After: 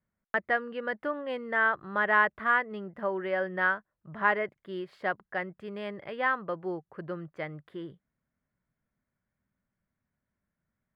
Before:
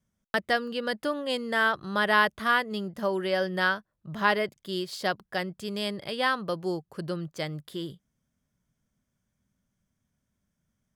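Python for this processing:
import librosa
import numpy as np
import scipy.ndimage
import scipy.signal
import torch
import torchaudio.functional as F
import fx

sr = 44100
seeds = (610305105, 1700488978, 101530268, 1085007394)

y = fx.curve_eq(x, sr, hz=(220.0, 330.0, 2000.0, 3900.0, 5800.0), db=(0, 3, 7, -14, -22))
y = F.gain(torch.from_numpy(y), -7.0).numpy()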